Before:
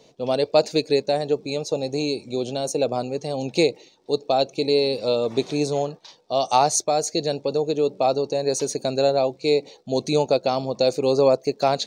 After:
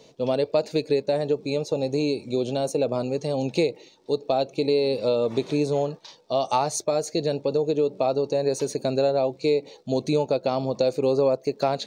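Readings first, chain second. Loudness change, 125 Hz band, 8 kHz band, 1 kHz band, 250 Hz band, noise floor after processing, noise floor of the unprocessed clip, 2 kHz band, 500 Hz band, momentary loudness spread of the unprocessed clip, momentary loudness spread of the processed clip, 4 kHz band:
-2.0 dB, +0.5 dB, -7.5 dB, -5.0 dB, -0.5 dB, -54 dBFS, -56 dBFS, -4.0 dB, -1.5 dB, 7 LU, 5 LU, -6.5 dB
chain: notch 740 Hz, Q 13; dynamic EQ 6100 Hz, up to -7 dB, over -43 dBFS, Q 0.8; harmonic-percussive split harmonic +3 dB; compressor 2.5:1, threshold -20 dBFS, peak gain reduction 7 dB

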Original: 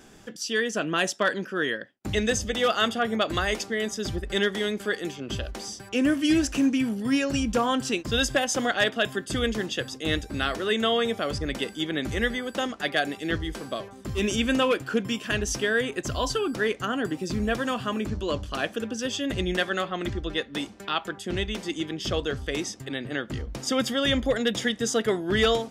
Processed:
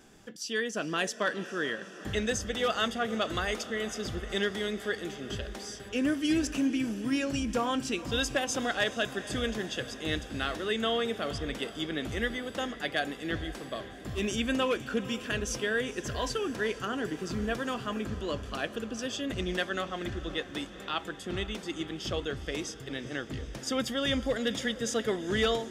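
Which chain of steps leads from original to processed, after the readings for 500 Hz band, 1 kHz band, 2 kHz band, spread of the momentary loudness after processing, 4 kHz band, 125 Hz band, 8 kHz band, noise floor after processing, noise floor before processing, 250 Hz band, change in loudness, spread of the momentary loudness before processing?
-5.0 dB, -5.5 dB, -5.5 dB, 8 LU, -5.5 dB, -5.5 dB, -5.5 dB, -45 dBFS, -46 dBFS, -5.5 dB, -5.5 dB, 8 LU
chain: diffused feedback echo 0.451 s, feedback 69%, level -15 dB; gain -5.5 dB

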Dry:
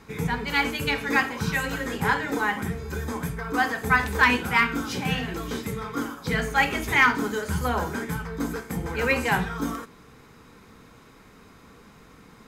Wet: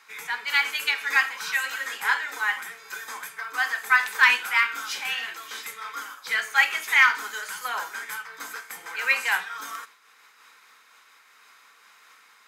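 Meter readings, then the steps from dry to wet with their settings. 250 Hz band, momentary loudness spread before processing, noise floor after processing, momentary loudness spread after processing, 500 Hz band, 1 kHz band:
under -25 dB, 11 LU, -56 dBFS, 17 LU, -16.0 dB, -3.0 dB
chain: Chebyshev high-pass 1500 Hz, order 2; noise-modulated level, depth 60%; gain +5 dB

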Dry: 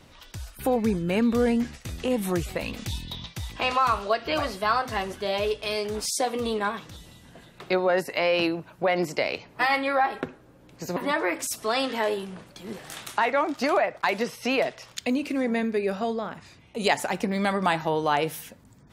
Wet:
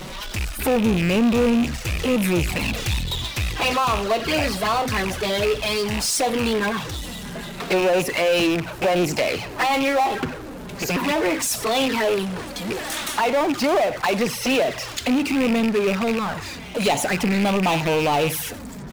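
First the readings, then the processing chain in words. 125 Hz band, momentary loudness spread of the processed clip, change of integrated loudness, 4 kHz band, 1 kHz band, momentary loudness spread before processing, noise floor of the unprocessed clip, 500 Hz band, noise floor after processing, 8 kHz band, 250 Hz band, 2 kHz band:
+8.5 dB, 9 LU, +4.5 dB, +7.5 dB, +3.0 dB, 13 LU, -53 dBFS, +4.5 dB, -35 dBFS, +8.5 dB, +6.5 dB, +4.5 dB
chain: rattling part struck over -34 dBFS, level -21 dBFS; on a send: echo 95 ms -24 dB; on the sum: envelope flanger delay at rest 5.9 ms, full sweep at -21 dBFS; power-law curve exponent 0.5

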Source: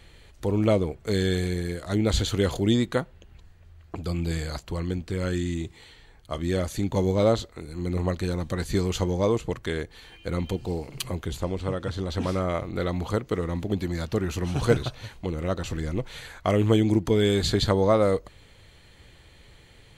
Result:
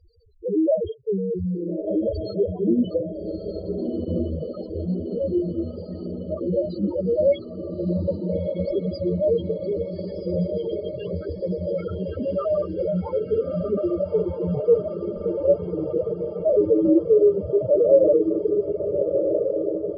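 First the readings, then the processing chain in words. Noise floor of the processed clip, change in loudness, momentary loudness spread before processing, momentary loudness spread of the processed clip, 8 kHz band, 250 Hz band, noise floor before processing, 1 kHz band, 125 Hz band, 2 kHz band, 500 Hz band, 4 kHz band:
-35 dBFS, +3.0 dB, 11 LU, 11 LU, under -40 dB, +2.5 dB, -53 dBFS, -9.5 dB, -4.0 dB, under -15 dB, +6.5 dB, under -15 dB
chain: FFT order left unsorted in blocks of 16 samples; low-pass sweep 4800 Hz -> 650 Hz, 10.27–13.49; non-linear reverb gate 80 ms flat, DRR 4.5 dB; overdrive pedal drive 21 dB, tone 5400 Hz, clips at -3 dBFS; loudest bins only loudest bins 2; tilt shelf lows +8 dB, about 1100 Hz; on a send: diffused feedback echo 1.357 s, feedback 63%, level -5 dB; on the sum: reverb removal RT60 0.54 s; high shelf 2900 Hz +7 dB; gain -6.5 dB

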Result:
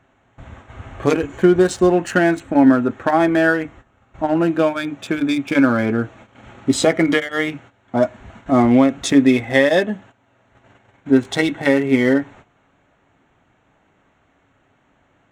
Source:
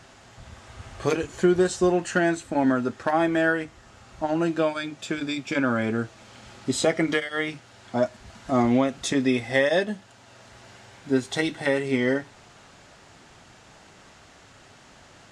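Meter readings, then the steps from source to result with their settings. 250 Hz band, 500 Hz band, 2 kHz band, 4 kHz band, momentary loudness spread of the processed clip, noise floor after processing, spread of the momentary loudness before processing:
+9.0 dB, +6.5 dB, +6.0 dB, +4.5 dB, 10 LU, -61 dBFS, 11 LU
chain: Wiener smoothing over 9 samples; small resonant body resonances 280/2200 Hz, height 7 dB, ringing for 0.1 s; gate -47 dBFS, range -14 dB; gain +6.5 dB

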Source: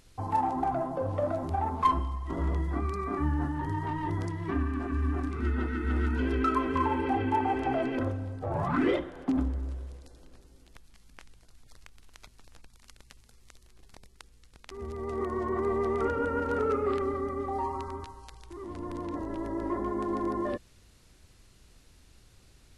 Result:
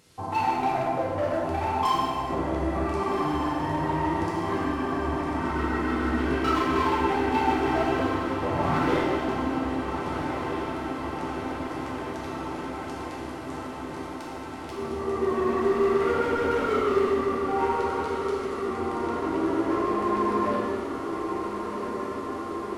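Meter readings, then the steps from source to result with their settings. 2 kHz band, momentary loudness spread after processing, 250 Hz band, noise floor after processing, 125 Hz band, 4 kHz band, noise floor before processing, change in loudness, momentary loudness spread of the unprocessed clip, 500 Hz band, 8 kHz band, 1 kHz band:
+7.5 dB, 10 LU, +5.0 dB, -36 dBFS, -0.5 dB, +11.0 dB, -59 dBFS, +3.5 dB, 10 LU, +6.5 dB, n/a, +5.5 dB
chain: HPF 120 Hz 12 dB/oct; hard clip -28 dBFS, distortion -10 dB; on a send: diffused feedback echo 1.454 s, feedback 76%, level -7 dB; on the sum: non-linear reverb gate 0.49 s falling, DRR -5.5 dB

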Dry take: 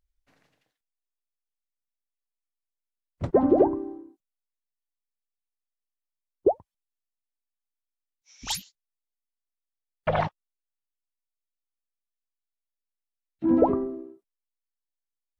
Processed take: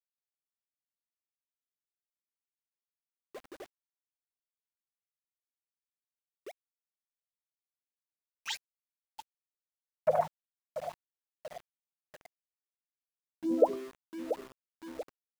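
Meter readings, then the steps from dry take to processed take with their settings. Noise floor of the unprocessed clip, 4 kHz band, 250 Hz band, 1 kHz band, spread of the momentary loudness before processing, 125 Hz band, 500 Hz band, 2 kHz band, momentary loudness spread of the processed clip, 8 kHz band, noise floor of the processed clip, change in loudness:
under -85 dBFS, -6.5 dB, -13.0 dB, -7.5 dB, 17 LU, -18.5 dB, -7.5 dB, -7.0 dB, 24 LU, -10.5 dB, under -85 dBFS, -9.0 dB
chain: per-bin expansion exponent 1.5; bell 8500 Hz +5.5 dB 0.64 oct; on a send: feedback echo 0.686 s, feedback 33%, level -16 dB; on the sum: AGC gain up to 15 dB; band-pass sweep 7400 Hz -> 550 Hz, 6.83–9.81; in parallel at +2 dB: compressor 10:1, threshold -40 dBFS, peak gain reduction 30 dB; on the sum: sample gate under -36.5 dBFS; gain -8.5 dB

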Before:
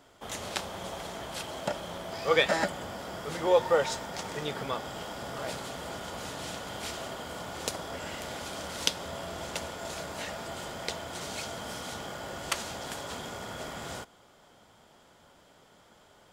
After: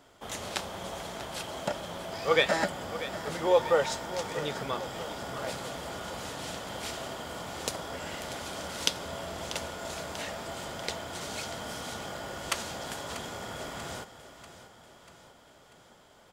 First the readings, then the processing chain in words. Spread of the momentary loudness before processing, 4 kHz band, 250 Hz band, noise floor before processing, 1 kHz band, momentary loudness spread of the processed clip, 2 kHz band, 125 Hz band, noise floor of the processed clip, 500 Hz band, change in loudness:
12 LU, +0.5 dB, 0.0 dB, -60 dBFS, +0.5 dB, 12 LU, +0.5 dB, +0.5 dB, -57 dBFS, 0.0 dB, +0.5 dB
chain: feedback echo 0.64 s, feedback 54%, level -13.5 dB

